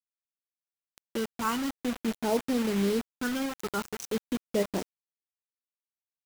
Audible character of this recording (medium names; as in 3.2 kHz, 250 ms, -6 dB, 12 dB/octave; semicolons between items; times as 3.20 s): phasing stages 12, 0.48 Hz, lowest notch 590–1400 Hz; a quantiser's noise floor 6-bit, dither none